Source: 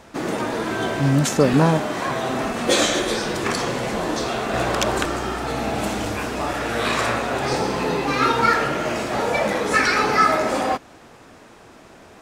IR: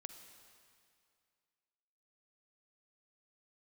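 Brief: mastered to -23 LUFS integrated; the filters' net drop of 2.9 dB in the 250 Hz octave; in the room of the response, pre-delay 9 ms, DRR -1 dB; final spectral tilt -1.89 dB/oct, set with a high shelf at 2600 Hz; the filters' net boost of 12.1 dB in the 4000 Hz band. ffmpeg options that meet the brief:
-filter_complex "[0:a]equalizer=f=250:t=o:g=-4,highshelf=f=2.6k:g=8,equalizer=f=4k:t=o:g=8,asplit=2[a][b];[1:a]atrim=start_sample=2205,adelay=9[c];[b][c]afir=irnorm=-1:irlink=0,volume=6dB[d];[a][d]amix=inputs=2:normalize=0,volume=-10dB"

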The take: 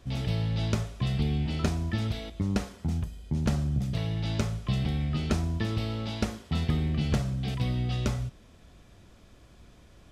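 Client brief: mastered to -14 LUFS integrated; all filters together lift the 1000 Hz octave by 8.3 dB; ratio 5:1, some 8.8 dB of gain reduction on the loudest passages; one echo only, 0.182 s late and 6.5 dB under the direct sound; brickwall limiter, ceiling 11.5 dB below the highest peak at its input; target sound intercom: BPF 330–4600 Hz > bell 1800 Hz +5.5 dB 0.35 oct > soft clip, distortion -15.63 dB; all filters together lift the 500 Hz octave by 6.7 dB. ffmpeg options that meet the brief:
-af "equalizer=f=500:t=o:g=7.5,equalizer=f=1k:t=o:g=8.5,acompressor=threshold=-30dB:ratio=5,alimiter=level_in=3.5dB:limit=-24dB:level=0:latency=1,volume=-3.5dB,highpass=330,lowpass=4.6k,equalizer=f=1.8k:t=o:w=0.35:g=5.5,aecho=1:1:182:0.473,asoftclip=threshold=-35.5dB,volume=29.5dB"

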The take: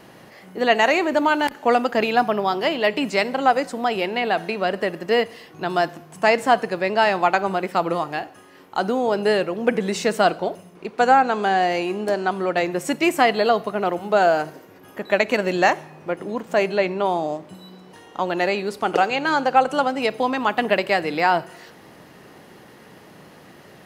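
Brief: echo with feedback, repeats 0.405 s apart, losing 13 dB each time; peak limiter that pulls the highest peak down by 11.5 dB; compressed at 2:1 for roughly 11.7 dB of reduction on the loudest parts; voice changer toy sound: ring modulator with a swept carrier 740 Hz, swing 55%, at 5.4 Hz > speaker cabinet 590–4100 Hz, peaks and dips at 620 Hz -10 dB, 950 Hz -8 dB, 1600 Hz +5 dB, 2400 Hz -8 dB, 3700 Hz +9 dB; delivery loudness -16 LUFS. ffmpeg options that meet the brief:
-af "acompressor=threshold=-33dB:ratio=2,alimiter=level_in=1dB:limit=-24dB:level=0:latency=1,volume=-1dB,aecho=1:1:405|810|1215:0.224|0.0493|0.0108,aeval=exprs='val(0)*sin(2*PI*740*n/s+740*0.55/5.4*sin(2*PI*5.4*n/s))':c=same,highpass=590,equalizer=f=620:t=q:w=4:g=-10,equalizer=f=950:t=q:w=4:g=-8,equalizer=f=1.6k:t=q:w=4:g=5,equalizer=f=2.4k:t=q:w=4:g=-8,equalizer=f=3.7k:t=q:w=4:g=9,lowpass=f=4.1k:w=0.5412,lowpass=f=4.1k:w=1.3066,volume=23.5dB"

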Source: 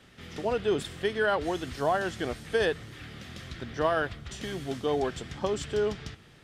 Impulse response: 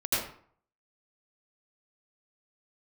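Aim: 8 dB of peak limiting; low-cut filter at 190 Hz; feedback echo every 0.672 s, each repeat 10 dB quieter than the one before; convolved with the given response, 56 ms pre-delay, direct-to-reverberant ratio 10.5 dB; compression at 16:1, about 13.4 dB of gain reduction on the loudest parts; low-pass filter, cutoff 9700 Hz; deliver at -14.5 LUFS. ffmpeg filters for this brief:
-filter_complex "[0:a]highpass=190,lowpass=9.7k,acompressor=threshold=-35dB:ratio=16,alimiter=level_in=7.5dB:limit=-24dB:level=0:latency=1,volume=-7.5dB,aecho=1:1:672|1344|2016|2688:0.316|0.101|0.0324|0.0104,asplit=2[a][b];[1:a]atrim=start_sample=2205,adelay=56[c];[b][c]afir=irnorm=-1:irlink=0,volume=-20dB[d];[a][d]amix=inputs=2:normalize=0,volume=27.5dB"

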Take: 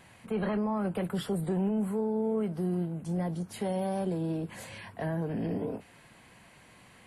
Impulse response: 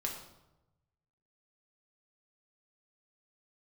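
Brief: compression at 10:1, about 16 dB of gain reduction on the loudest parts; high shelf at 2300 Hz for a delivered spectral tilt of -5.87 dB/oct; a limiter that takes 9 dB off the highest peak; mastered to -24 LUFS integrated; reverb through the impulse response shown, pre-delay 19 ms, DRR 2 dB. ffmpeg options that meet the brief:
-filter_complex "[0:a]highshelf=f=2.3k:g=3,acompressor=threshold=-43dB:ratio=10,alimiter=level_in=15.5dB:limit=-24dB:level=0:latency=1,volume=-15.5dB,asplit=2[a][b];[1:a]atrim=start_sample=2205,adelay=19[c];[b][c]afir=irnorm=-1:irlink=0,volume=-3.5dB[d];[a][d]amix=inputs=2:normalize=0,volume=21.5dB"

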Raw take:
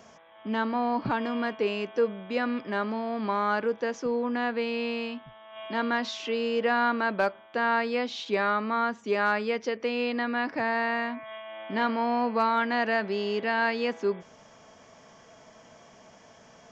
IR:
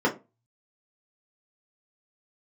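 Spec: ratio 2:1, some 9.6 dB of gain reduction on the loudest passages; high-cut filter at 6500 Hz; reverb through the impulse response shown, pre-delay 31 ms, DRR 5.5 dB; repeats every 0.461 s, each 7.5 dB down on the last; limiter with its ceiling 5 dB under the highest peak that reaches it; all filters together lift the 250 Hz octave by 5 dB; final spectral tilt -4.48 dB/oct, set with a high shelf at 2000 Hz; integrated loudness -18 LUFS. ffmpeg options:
-filter_complex "[0:a]lowpass=6.5k,equalizer=f=250:t=o:g=5.5,highshelf=f=2k:g=-6.5,acompressor=threshold=-38dB:ratio=2,alimiter=level_in=4dB:limit=-24dB:level=0:latency=1,volume=-4dB,aecho=1:1:461|922|1383|1844|2305:0.422|0.177|0.0744|0.0312|0.0131,asplit=2[a][b];[1:a]atrim=start_sample=2205,adelay=31[c];[b][c]afir=irnorm=-1:irlink=0,volume=-20dB[d];[a][d]amix=inputs=2:normalize=0,volume=16dB"

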